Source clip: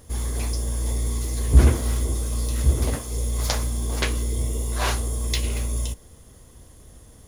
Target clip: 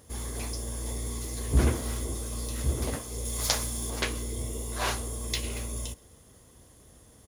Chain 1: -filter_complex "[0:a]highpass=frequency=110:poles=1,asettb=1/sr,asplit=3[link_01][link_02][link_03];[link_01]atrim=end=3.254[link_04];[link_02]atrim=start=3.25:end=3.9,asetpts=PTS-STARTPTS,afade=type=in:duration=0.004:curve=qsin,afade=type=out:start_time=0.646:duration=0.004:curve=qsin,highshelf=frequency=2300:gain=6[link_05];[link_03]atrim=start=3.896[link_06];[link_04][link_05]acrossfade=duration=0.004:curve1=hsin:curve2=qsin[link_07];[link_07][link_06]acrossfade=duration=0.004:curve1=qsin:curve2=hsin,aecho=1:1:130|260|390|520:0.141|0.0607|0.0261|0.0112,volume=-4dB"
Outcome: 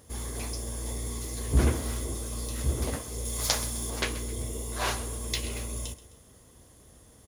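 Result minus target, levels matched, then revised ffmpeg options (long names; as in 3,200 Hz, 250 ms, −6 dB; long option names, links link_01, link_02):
echo-to-direct +11.5 dB
-filter_complex "[0:a]highpass=frequency=110:poles=1,asettb=1/sr,asplit=3[link_01][link_02][link_03];[link_01]atrim=end=3.254[link_04];[link_02]atrim=start=3.25:end=3.9,asetpts=PTS-STARTPTS,afade=type=in:duration=0.004:curve=qsin,afade=type=out:start_time=0.646:duration=0.004:curve=qsin,highshelf=frequency=2300:gain=6[link_05];[link_03]atrim=start=3.896[link_06];[link_04][link_05]acrossfade=duration=0.004:curve1=hsin:curve2=qsin[link_07];[link_07][link_06]acrossfade=duration=0.004:curve1=qsin:curve2=hsin,aecho=1:1:130|260:0.0376|0.0162,volume=-4dB"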